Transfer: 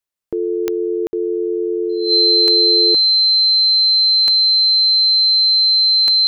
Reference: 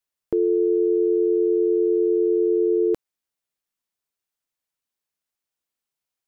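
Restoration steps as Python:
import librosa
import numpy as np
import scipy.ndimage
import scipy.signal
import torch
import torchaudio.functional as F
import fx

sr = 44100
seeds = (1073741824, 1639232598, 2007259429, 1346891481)

y = fx.fix_declick_ar(x, sr, threshold=10.0)
y = fx.notch(y, sr, hz=4100.0, q=30.0)
y = fx.fix_ambience(y, sr, seeds[0], print_start_s=0.0, print_end_s=0.5, start_s=1.07, end_s=1.13)
y = fx.gain(y, sr, db=fx.steps((0.0, 0.0), (4.51, -5.0)))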